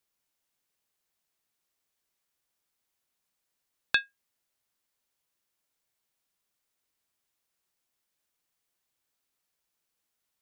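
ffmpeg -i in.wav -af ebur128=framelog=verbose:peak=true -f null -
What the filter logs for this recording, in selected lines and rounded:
Integrated loudness:
  I:         -29.6 LUFS
  Threshold: -40.6 LUFS
Loudness range:
  LRA:         0.0 LU
  Threshold: -58.5 LUFS
  LRA low:   -38.3 LUFS
  LRA high:  -38.3 LUFS
True peak:
  Peak:       -8.5 dBFS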